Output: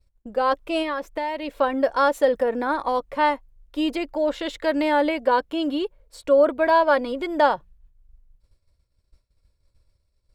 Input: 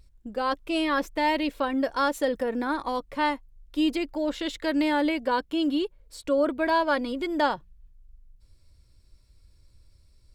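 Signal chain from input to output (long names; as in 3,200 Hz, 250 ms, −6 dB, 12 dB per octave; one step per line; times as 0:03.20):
downward expander −47 dBFS
drawn EQ curve 320 Hz 0 dB, 550 Hz +8 dB, 5,000 Hz −1 dB
0:00.82–0:01.57: downward compressor 6 to 1, threshold −25 dBFS, peak gain reduction 10 dB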